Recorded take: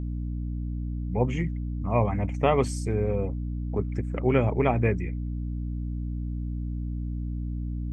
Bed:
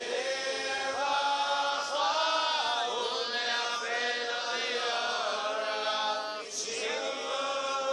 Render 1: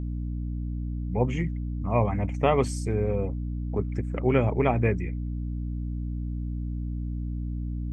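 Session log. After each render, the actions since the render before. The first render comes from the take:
no processing that can be heard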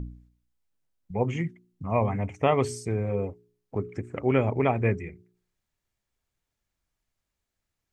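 hum removal 60 Hz, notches 7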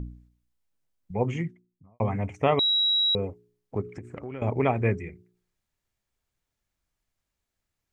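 0:01.28–0:02.00: fade out and dull
0:02.59–0:03.15: beep over 3,870 Hz −20 dBFS
0:03.81–0:04.42: downward compressor 8 to 1, threshold −33 dBFS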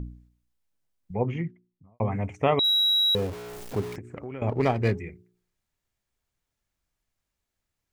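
0:01.15–0:02.12: high-frequency loss of the air 220 metres
0:02.64–0:03.96: converter with a step at zero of −33.5 dBFS
0:04.49–0:04.99: windowed peak hold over 5 samples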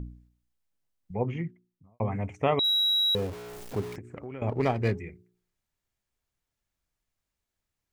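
level −2.5 dB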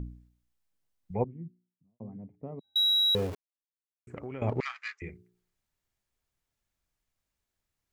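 0:01.24–0:02.76: four-pole ladder band-pass 220 Hz, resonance 35%
0:03.35–0:04.07: silence
0:04.60–0:05.02: Chebyshev band-pass filter 1,200–7,200 Hz, order 4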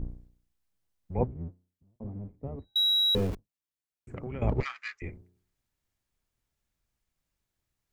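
sub-octave generator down 1 octave, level +2 dB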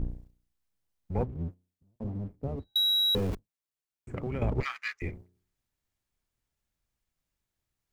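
downward compressor, threshold −27 dBFS, peak gain reduction 7 dB
leveller curve on the samples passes 1

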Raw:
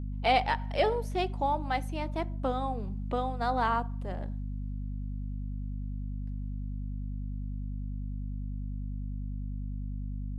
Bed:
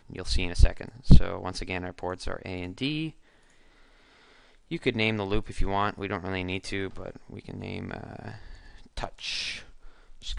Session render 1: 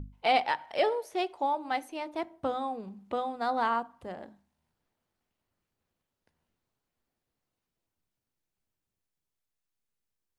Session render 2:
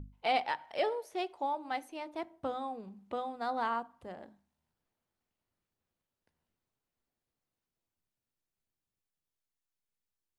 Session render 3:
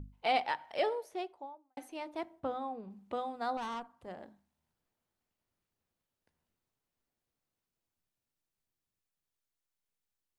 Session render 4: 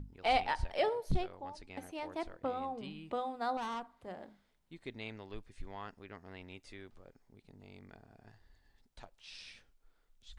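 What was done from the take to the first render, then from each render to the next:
mains-hum notches 50/100/150/200/250/300 Hz
level −5 dB
0:00.90–0:01.77: fade out and dull; 0:02.39–0:02.89: high-shelf EQ 4,800 Hz → 3,100 Hz −12 dB; 0:03.57–0:04.08: tube saturation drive 35 dB, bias 0.55
mix in bed −19 dB

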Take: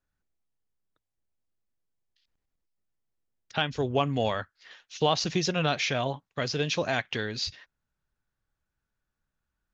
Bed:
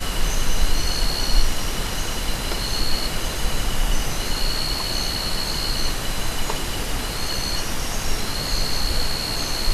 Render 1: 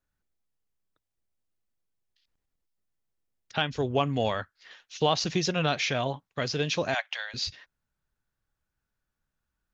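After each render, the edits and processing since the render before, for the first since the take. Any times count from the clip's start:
0:06.94–0:07.34: Chebyshev high-pass filter 570 Hz, order 6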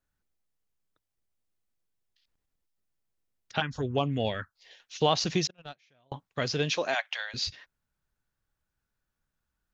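0:03.60–0:04.80: phaser swept by the level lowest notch 170 Hz, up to 1,800 Hz, full sweep at −20.5 dBFS
0:05.47–0:06.12: noise gate −23 dBFS, range −38 dB
0:06.72–0:07.21: high-pass filter 350 Hz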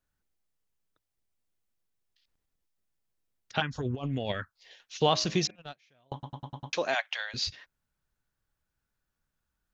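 0:03.80–0:04.32: compressor whose output falls as the input rises −31 dBFS, ratio −0.5
0:05.00–0:05.56: hum removal 103.9 Hz, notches 24
0:06.13: stutter in place 0.10 s, 6 plays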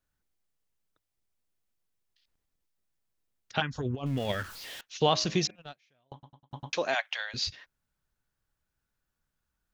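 0:04.06–0:04.81: converter with a step at zero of −39 dBFS
0:05.52–0:06.51: fade out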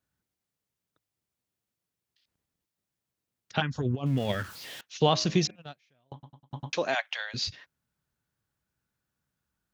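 high-pass filter 120 Hz 12 dB per octave
low-shelf EQ 190 Hz +10 dB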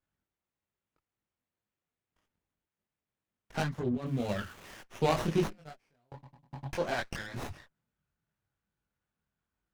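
multi-voice chorus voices 6, 1.1 Hz, delay 22 ms, depth 3 ms
windowed peak hold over 9 samples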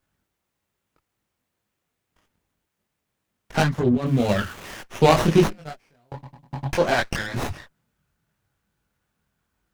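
level +12 dB

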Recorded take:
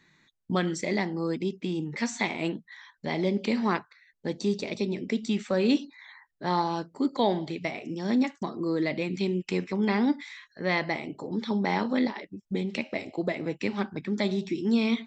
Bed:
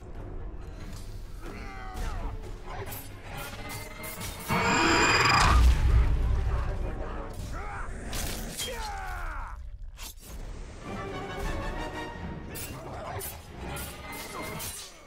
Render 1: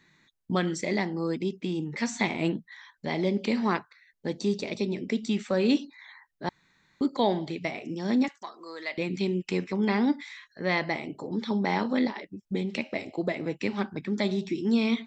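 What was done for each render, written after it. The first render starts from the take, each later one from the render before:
0:02.07–0:02.65: low-shelf EQ 250 Hz +7 dB
0:06.49–0:07.01: fill with room tone
0:08.28–0:08.98: high-pass filter 910 Hz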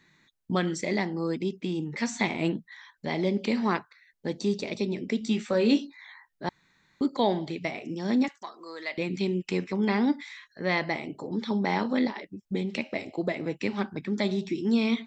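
0:05.19–0:06.45: double-tracking delay 18 ms −7 dB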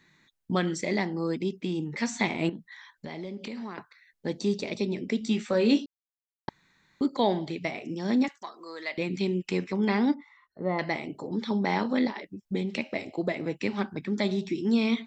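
0:02.49–0:03.78: downward compressor, threshold −34 dBFS
0:05.86–0:06.48: silence
0:10.14–0:10.79: Savitzky-Golay smoothing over 65 samples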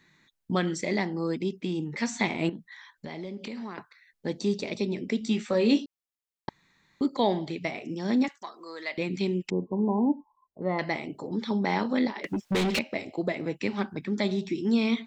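0:05.52–0:07.46: notch filter 1,500 Hz, Q 13
0:09.50–0:10.62: linear-phase brick-wall low-pass 1,100 Hz
0:12.24–0:12.79: mid-hump overdrive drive 31 dB, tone 5,600 Hz, clips at −18.5 dBFS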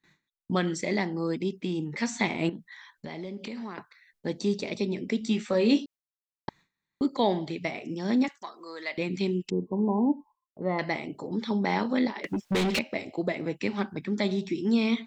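0:09.30–0:09.68: gain on a spectral selection 510–2,600 Hz −9 dB
noise gate with hold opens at −52 dBFS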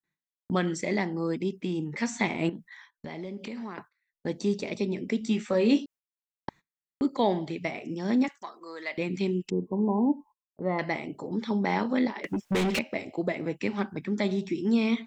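noise gate −48 dBFS, range −21 dB
parametric band 4,100 Hz −4.5 dB 0.66 octaves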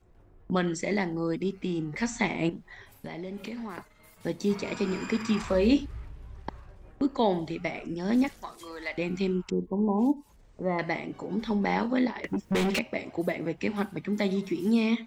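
mix in bed −18 dB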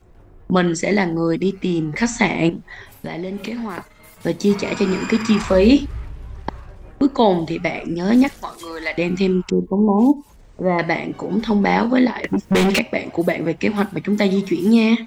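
level +10.5 dB
brickwall limiter −2 dBFS, peak gain reduction 1.5 dB

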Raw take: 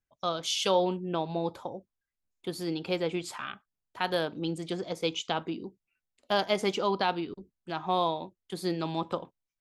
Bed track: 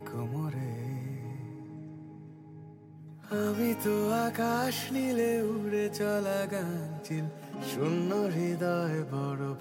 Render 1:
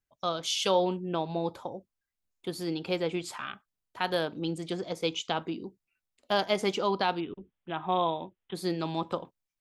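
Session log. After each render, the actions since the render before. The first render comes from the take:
0:07.20–0:08.55: bad sample-rate conversion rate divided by 6×, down none, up filtered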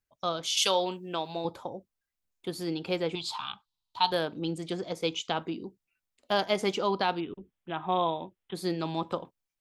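0:00.57–0:01.45: spectral tilt +3 dB per octave
0:03.15–0:04.12: drawn EQ curve 110 Hz 0 dB, 570 Hz −14 dB, 900 Hz +9 dB, 1,800 Hz −13 dB, 3,900 Hz +14 dB, 5,800 Hz +1 dB, 10,000 Hz −5 dB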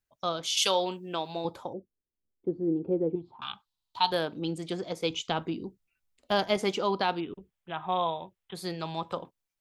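0:01.73–0:03.42: low-pass with resonance 390 Hz, resonance Q 1.9
0:05.10–0:06.57: low-shelf EQ 120 Hz +11 dB
0:07.39–0:09.17: parametric band 280 Hz −11 dB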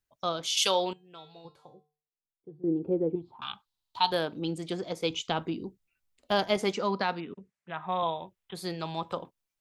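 0:00.93–0:02.64: tuned comb filter 150 Hz, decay 0.37 s, harmonics odd, mix 90%
0:06.72–0:08.03: loudspeaker in its box 130–8,900 Hz, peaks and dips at 210 Hz +4 dB, 340 Hz −6 dB, 790 Hz −4 dB, 1,900 Hz +4 dB, 3,200 Hz −8 dB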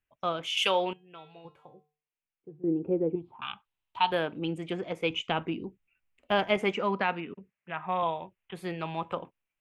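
high shelf with overshoot 3,400 Hz −9 dB, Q 3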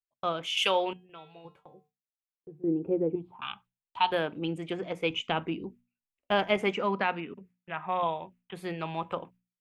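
noise gate with hold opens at −49 dBFS
mains-hum notches 60/120/180/240 Hz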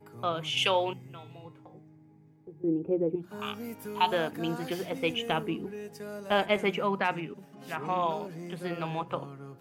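mix in bed track −10.5 dB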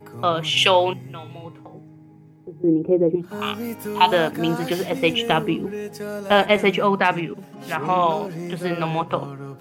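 level +10 dB
brickwall limiter −2 dBFS, peak gain reduction 1.5 dB

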